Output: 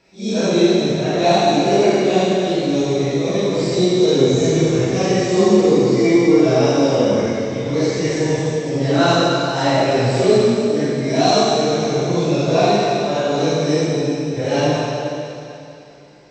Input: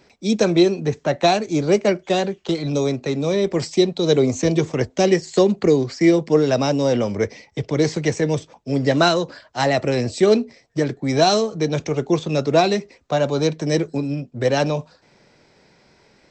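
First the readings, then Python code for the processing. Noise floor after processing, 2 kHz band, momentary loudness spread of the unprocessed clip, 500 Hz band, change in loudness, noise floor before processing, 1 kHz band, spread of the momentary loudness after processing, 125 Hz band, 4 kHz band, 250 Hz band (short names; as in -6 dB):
-36 dBFS, +2.5 dB, 8 LU, +3.0 dB, +3.0 dB, -57 dBFS, +4.0 dB, 7 LU, +3.0 dB, +3.5 dB, +3.5 dB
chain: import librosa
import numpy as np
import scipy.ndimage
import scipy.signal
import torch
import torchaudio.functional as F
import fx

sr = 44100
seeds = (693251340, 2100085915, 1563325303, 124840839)

y = fx.phase_scramble(x, sr, seeds[0], window_ms=200)
y = fx.peak_eq(y, sr, hz=1900.0, db=-4.0, octaves=0.26)
y = fx.rev_plate(y, sr, seeds[1], rt60_s=2.8, hf_ratio=1.0, predelay_ms=0, drr_db=-5.5)
y = F.gain(torch.from_numpy(y), -3.0).numpy()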